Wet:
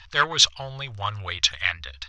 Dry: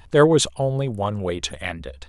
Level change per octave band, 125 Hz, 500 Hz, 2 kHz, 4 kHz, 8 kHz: -11.0, -17.5, +5.0, +8.5, +2.0 dB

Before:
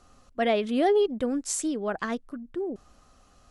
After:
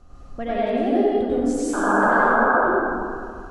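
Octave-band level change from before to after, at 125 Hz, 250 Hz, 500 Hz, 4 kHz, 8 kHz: n/a, +7.0 dB, +5.0 dB, -4.5 dB, -4.0 dB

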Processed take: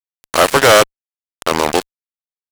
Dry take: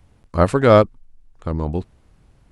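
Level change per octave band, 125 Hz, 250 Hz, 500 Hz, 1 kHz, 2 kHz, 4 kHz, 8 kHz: -8.0 dB, -2.0 dB, +3.0 dB, +7.5 dB, +13.5 dB, +18.5 dB, n/a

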